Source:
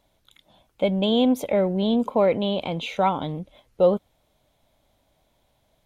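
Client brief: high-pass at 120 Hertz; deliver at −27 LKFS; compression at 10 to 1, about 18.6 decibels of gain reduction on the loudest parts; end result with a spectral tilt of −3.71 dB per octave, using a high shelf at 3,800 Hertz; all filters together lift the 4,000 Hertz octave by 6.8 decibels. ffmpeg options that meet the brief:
ffmpeg -i in.wav -af "highpass=120,highshelf=frequency=3800:gain=6,equalizer=frequency=4000:width_type=o:gain=5.5,acompressor=threshold=-32dB:ratio=10,volume=9.5dB" out.wav

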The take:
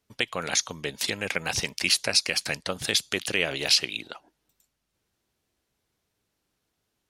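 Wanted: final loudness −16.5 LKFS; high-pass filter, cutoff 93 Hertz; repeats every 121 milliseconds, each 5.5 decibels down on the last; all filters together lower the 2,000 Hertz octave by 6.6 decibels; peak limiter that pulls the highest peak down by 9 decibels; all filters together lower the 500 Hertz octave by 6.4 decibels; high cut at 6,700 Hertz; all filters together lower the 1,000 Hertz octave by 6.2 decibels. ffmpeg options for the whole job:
ffmpeg -i in.wav -af "highpass=93,lowpass=6700,equalizer=frequency=500:width_type=o:gain=-6.5,equalizer=frequency=1000:width_type=o:gain=-4,equalizer=frequency=2000:width_type=o:gain=-7.5,alimiter=limit=-18.5dB:level=0:latency=1,aecho=1:1:121|242|363|484|605|726|847:0.531|0.281|0.149|0.079|0.0419|0.0222|0.0118,volume=15dB" out.wav

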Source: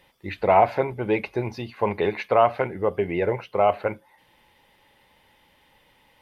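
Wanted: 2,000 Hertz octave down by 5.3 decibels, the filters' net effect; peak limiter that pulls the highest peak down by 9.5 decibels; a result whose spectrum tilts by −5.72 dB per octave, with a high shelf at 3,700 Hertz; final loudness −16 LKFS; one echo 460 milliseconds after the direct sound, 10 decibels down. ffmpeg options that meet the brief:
ffmpeg -i in.wav -af "equalizer=frequency=2000:width_type=o:gain=-8,highshelf=frequency=3700:gain=4.5,alimiter=limit=-16dB:level=0:latency=1,aecho=1:1:460:0.316,volume=12.5dB" out.wav

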